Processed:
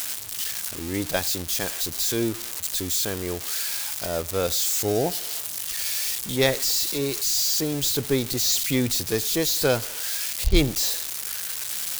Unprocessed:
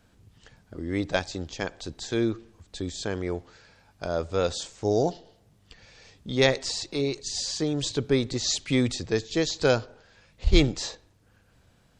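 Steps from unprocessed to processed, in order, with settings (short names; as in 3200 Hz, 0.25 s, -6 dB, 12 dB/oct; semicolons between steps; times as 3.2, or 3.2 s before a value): switching spikes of -18 dBFS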